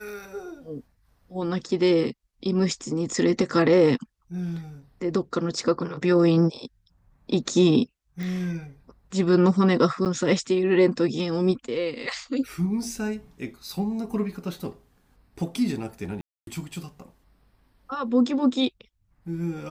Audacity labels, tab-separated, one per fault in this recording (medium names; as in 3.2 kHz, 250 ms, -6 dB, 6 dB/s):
8.230000	8.230000	pop -21 dBFS
10.050000	10.060000	dropout 8.9 ms
16.210000	16.470000	dropout 262 ms